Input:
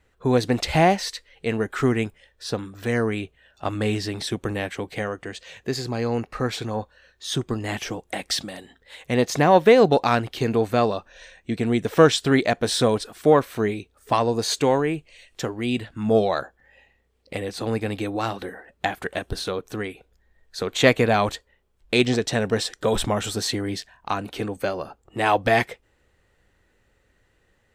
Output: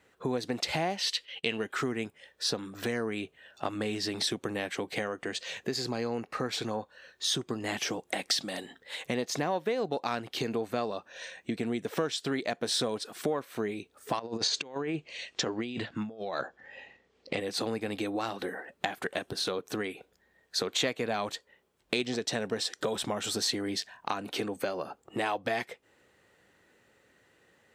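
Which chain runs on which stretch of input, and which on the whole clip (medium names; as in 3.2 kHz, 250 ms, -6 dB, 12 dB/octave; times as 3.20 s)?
0.97–1.72 s: gate -57 dBFS, range -25 dB + peaking EQ 3 kHz +14.5 dB 0.62 oct
14.19–17.40 s: tremolo saw up 1.8 Hz, depth 35% + low-pass 6.6 kHz 24 dB/octave + compressor with a negative ratio -29 dBFS, ratio -0.5
whole clip: compression 5:1, threshold -32 dBFS; high-pass 170 Hz 12 dB/octave; dynamic bell 4.8 kHz, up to +4 dB, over -49 dBFS, Q 1.2; trim +2.5 dB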